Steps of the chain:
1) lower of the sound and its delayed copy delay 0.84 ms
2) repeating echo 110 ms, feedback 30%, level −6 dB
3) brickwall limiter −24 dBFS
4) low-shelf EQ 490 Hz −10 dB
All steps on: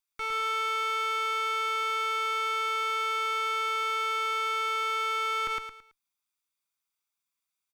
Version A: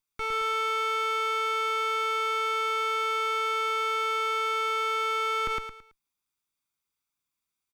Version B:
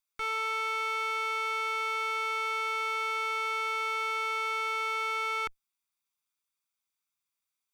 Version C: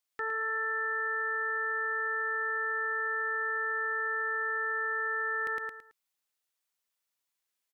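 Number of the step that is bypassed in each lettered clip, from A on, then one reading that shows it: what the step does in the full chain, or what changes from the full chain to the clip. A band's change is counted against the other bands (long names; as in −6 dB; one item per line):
4, 500 Hz band +5.0 dB
2, change in crest factor +2.0 dB
1, change in integrated loudness −2.5 LU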